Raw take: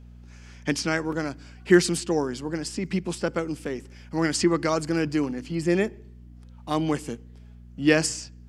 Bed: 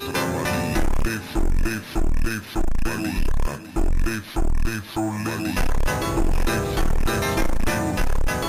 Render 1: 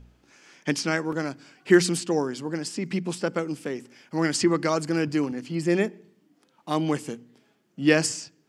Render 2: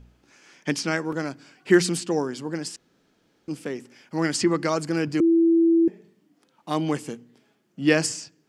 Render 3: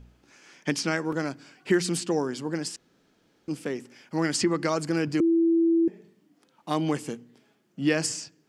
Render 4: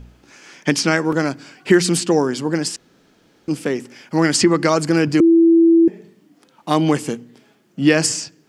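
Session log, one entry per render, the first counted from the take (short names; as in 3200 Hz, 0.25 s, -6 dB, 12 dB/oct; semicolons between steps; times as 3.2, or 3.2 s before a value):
de-hum 60 Hz, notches 4
2.76–3.48 room tone; 5.2–5.88 bleep 332 Hz -14.5 dBFS
compressor 2.5:1, threshold -21 dBFS, peak gain reduction 7 dB
gain +10 dB; limiter -2 dBFS, peak gain reduction 1 dB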